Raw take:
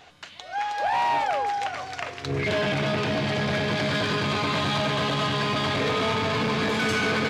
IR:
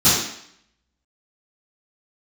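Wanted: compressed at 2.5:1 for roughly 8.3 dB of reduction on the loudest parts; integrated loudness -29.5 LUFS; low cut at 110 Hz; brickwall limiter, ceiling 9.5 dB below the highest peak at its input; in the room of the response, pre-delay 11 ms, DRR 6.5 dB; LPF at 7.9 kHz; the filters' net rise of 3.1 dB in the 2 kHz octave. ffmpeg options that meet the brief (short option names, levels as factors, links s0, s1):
-filter_complex "[0:a]highpass=110,lowpass=7900,equalizer=f=2000:t=o:g=4,acompressor=threshold=0.0224:ratio=2.5,alimiter=level_in=1.58:limit=0.0631:level=0:latency=1,volume=0.631,asplit=2[s0][s1];[1:a]atrim=start_sample=2205,adelay=11[s2];[s1][s2]afir=irnorm=-1:irlink=0,volume=0.0447[s3];[s0][s3]amix=inputs=2:normalize=0,volume=1.78"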